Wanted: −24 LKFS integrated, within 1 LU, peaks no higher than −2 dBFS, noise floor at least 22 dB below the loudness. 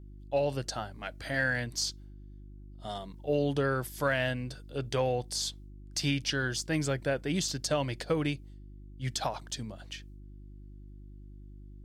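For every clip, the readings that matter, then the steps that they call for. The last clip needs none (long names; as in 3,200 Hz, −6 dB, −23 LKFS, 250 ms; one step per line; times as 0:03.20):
mains hum 50 Hz; hum harmonics up to 350 Hz; level of the hum −46 dBFS; integrated loudness −32.0 LKFS; sample peak −17.0 dBFS; target loudness −24.0 LKFS
→ hum removal 50 Hz, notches 7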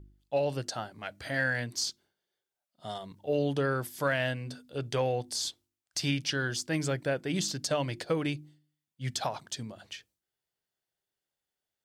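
mains hum none found; integrated loudness −32.5 LKFS; sample peak −17.5 dBFS; target loudness −24.0 LKFS
→ level +8.5 dB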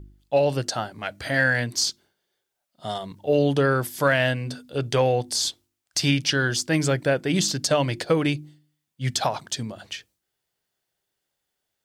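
integrated loudness −24.0 LKFS; sample peak −9.0 dBFS; background noise floor −81 dBFS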